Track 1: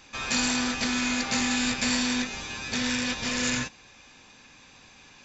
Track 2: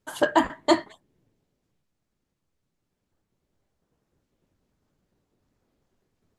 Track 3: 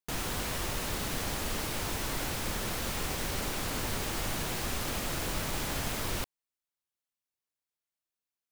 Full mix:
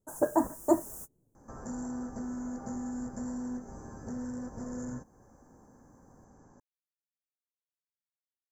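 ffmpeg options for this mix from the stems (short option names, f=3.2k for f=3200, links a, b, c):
-filter_complex "[0:a]aemphasis=mode=reproduction:type=75fm,acompressor=threshold=-41dB:ratio=2,adelay=1350,volume=1dB[a];[1:a]volume=-3dB,asplit=2[b][c];[2:a]tiltshelf=f=1.5k:g=-7.5,dynaudnorm=f=660:g=3:m=9.5dB,volume=-16dB[d];[c]apad=whole_len=375558[e];[d][e]sidechaingate=range=-47dB:threshold=-56dB:ratio=16:detection=peak[f];[a][b][f]amix=inputs=3:normalize=0,asuperstop=centerf=3100:order=8:qfactor=0.58,equalizer=f=1.2k:t=o:w=1:g=-9"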